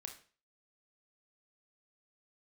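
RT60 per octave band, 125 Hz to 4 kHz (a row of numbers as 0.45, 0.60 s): 0.45, 0.40, 0.40, 0.40, 0.40, 0.40 s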